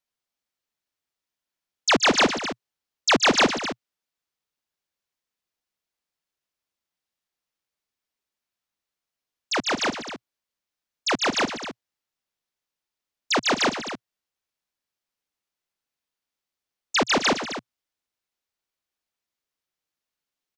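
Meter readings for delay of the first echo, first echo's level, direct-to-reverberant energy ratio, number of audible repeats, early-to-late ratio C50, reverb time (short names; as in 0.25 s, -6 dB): 0.123 s, -17.0 dB, none, 3, none, none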